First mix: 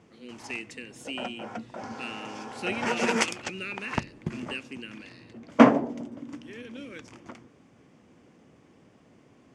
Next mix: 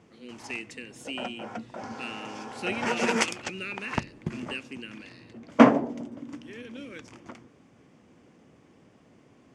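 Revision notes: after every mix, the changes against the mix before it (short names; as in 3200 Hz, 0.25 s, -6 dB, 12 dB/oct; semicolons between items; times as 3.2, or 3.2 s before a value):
none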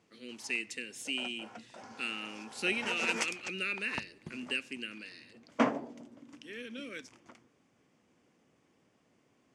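background -10.5 dB; master: add tilt +1.5 dB/oct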